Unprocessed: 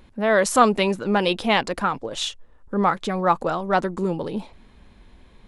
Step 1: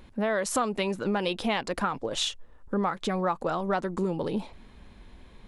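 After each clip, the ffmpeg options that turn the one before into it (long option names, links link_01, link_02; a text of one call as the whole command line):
ffmpeg -i in.wav -af "acompressor=threshold=-24dB:ratio=6" out.wav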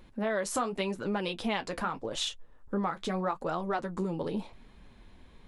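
ffmpeg -i in.wav -af "flanger=delay=5.5:depth=7.6:regen=-46:speed=0.84:shape=triangular" out.wav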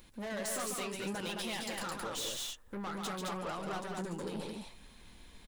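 ffmpeg -i in.wav -af "crystalizer=i=5:c=0,aeval=exprs='(tanh(39.8*val(0)+0.15)-tanh(0.15))/39.8':channel_layout=same,aecho=1:1:139.9|215.7:0.562|0.708,volume=-5dB" out.wav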